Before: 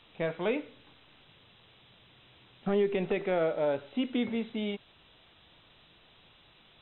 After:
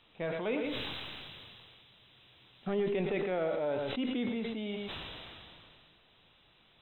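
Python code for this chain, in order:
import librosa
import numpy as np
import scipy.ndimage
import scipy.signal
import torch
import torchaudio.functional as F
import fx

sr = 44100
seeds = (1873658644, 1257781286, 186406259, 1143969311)

y = fx.high_shelf(x, sr, hz=3600.0, db=9.5, at=(0.65, 2.74))
y = y + 10.0 ** (-11.5 / 20.0) * np.pad(y, (int(115 * sr / 1000.0), 0))[:len(y)]
y = fx.sustainer(y, sr, db_per_s=22.0)
y = F.gain(torch.from_numpy(y), -5.0).numpy()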